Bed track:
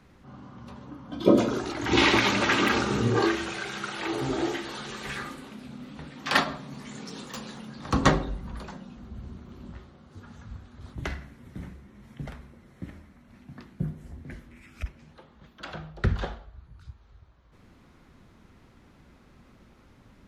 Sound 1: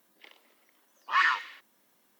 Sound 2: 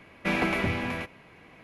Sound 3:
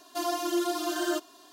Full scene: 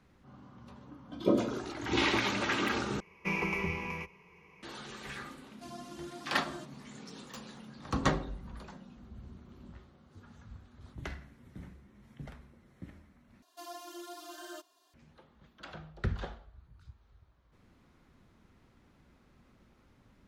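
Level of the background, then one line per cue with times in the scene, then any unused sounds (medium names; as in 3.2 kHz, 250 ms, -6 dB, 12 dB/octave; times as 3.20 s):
bed track -8 dB
3.00 s: replace with 2 -10 dB + rippled EQ curve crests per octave 0.79, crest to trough 15 dB
5.46 s: add 3 -17.5 dB + low-pass 11 kHz 24 dB/octave
13.42 s: replace with 3 -14.5 dB + high-pass 420 Hz
not used: 1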